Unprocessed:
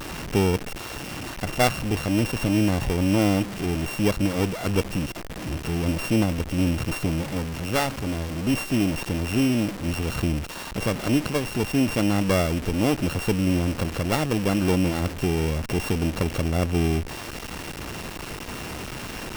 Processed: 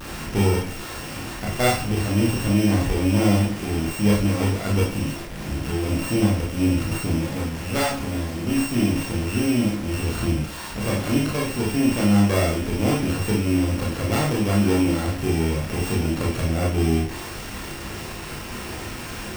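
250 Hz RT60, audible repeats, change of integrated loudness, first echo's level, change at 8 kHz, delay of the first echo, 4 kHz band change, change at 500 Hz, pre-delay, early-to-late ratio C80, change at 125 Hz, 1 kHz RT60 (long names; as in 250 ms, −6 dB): 0.40 s, no echo audible, +2.0 dB, no echo audible, +2.5 dB, no echo audible, +1.0 dB, +1.0 dB, 22 ms, 10.0 dB, +3.0 dB, 0.40 s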